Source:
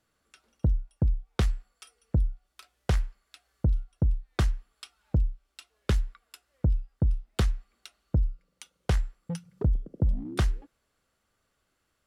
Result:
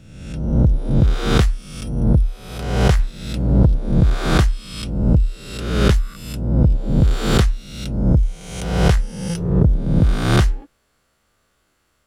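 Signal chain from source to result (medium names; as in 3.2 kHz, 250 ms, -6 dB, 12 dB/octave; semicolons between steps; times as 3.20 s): reverse spectral sustain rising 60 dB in 1.06 s; 2.99–3.66 s: waveshaping leveller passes 1; trim +8 dB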